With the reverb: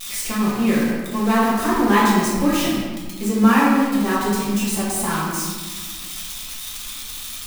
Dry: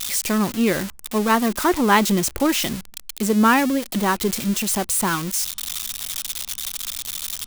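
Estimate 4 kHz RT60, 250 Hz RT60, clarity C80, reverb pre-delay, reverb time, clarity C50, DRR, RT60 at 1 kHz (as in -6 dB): 0.85 s, 2.1 s, 1.5 dB, 4 ms, 1.6 s, -1.0 dB, -8.5 dB, 1.6 s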